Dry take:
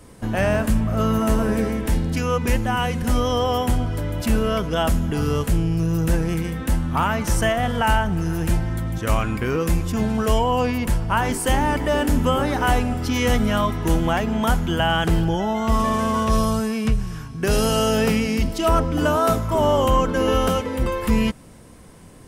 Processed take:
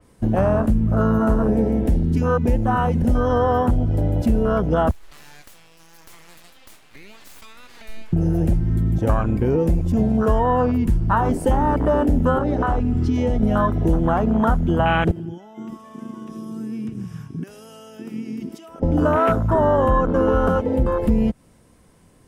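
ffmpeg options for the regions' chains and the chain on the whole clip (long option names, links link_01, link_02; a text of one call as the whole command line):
ffmpeg -i in.wav -filter_complex "[0:a]asettb=1/sr,asplit=3[link_01][link_02][link_03];[link_01]atrim=end=4.914[link_04];[link_02]atrim=start=4.91:end=8.13,asetpts=PTS-STARTPTS,afade=type=in:duration=0.004:curve=qsin,afade=type=out:start_time=3.216:duration=0.004:curve=qsin,highpass=850,acompressor=threshold=-29dB:ratio=5:attack=3.2:release=140:knee=1:detection=peak,aeval=exprs='abs(val(0))':channel_layout=same[link_05];[link_03]atrim=start=8.126[link_06];[link_04][link_05]acrossfade=duration=0.004:curve1=hsin:curve2=qsin[link_07];[link_07][link_06]acrossfade=duration=0.004:curve1=qsin:curve2=hsin,asettb=1/sr,asplit=3[link_08][link_09][link_10];[link_08]atrim=end=12.384[link_11];[link_09]atrim=start=12.38:end=13.43,asetpts=PTS-STARTPTS,afade=type=in:duration=0.004:curve=qsin,afade=type=out:start_time=1.046:duration=0.004:curve=qsin,lowpass=7400,acompressor=threshold=-20dB:ratio=16:attack=3.2:release=140:knee=1:detection=peak[link_12];[link_10]atrim=start=13.426[link_13];[link_11][link_12]acrossfade=duration=0.004:curve1=hsin:curve2=qsin[link_14];[link_14][link_13]acrossfade=duration=0.004:curve1=qsin:curve2=hsin,asettb=1/sr,asplit=3[link_15][link_16][link_17];[link_15]atrim=end=15.114[link_18];[link_16]atrim=start=15.11:end=18.83,asetpts=PTS-STARTPTS,afade=type=in:duration=0.004:curve=qsin,afade=type=out:start_time=3.716:duration=0.004:curve=qsin,highpass=180,bandreject=frequency=4200:width=7.2,acompressor=threshold=-31dB:ratio=10:attack=3.2:release=140:knee=1:detection=peak[link_19];[link_17]atrim=start=18.826[link_20];[link_18][link_19]acrossfade=duration=0.004:curve1=hsin:curve2=qsin[link_21];[link_21][link_20]acrossfade=duration=0.004:curve1=qsin:curve2=hsin,afwtdn=0.0794,acompressor=threshold=-24dB:ratio=3,adynamicequalizer=threshold=0.00501:dfrequency=3900:dqfactor=0.7:tfrequency=3900:tqfactor=0.7:attack=5:release=100:ratio=0.375:range=2:mode=cutabove:tftype=highshelf,volume=8dB" out.wav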